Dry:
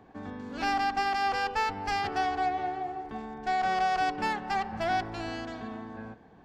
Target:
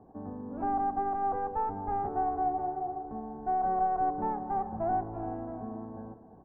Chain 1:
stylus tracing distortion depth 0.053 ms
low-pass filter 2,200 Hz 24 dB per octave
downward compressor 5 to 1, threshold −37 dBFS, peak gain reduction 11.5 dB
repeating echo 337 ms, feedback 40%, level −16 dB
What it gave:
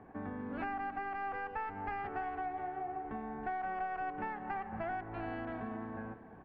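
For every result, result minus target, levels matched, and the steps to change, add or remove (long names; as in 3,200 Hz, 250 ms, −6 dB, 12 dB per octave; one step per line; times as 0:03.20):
2,000 Hz band +16.0 dB; downward compressor: peak gain reduction +11.5 dB
change: low-pass filter 940 Hz 24 dB per octave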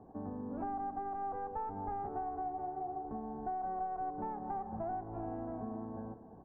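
downward compressor: peak gain reduction +11 dB
remove: downward compressor 5 to 1, threshold −37 dBFS, peak gain reduction 11 dB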